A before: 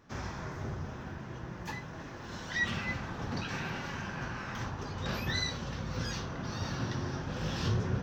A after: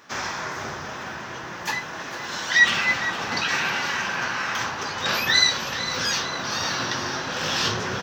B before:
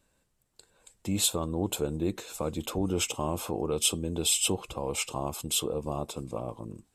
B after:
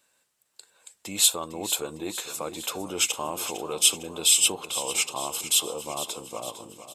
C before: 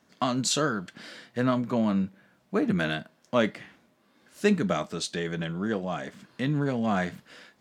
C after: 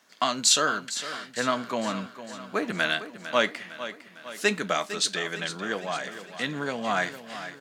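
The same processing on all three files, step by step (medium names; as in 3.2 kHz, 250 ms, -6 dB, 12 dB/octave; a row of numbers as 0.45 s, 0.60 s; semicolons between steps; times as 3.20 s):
high-pass 1.3 kHz 6 dB/octave; on a send: feedback delay 455 ms, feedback 55%, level -12.5 dB; on the sum: peak normalisation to -6 dBFS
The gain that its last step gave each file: +17.0 dB, +7.0 dB, +7.5 dB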